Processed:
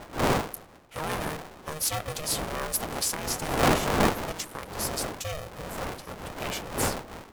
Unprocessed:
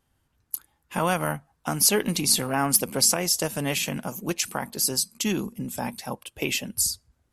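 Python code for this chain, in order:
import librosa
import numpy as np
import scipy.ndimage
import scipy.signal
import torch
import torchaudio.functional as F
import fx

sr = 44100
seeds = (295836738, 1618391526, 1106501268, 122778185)

y = fx.dmg_wind(x, sr, seeds[0], corner_hz=630.0, level_db=-23.0)
y = y * np.sign(np.sin(2.0 * np.pi * 310.0 * np.arange(len(y)) / sr))
y = y * librosa.db_to_amplitude(-8.5)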